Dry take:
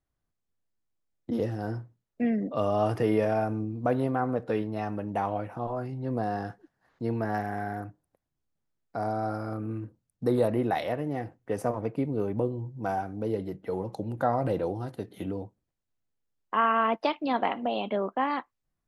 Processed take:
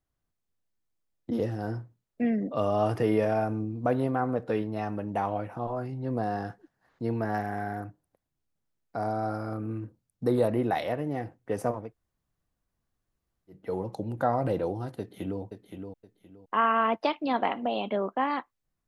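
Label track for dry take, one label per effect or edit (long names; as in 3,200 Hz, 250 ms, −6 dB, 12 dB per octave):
11.820000	13.590000	fill with room tone, crossfade 0.24 s
14.990000	15.410000	delay throw 520 ms, feedback 25%, level −7 dB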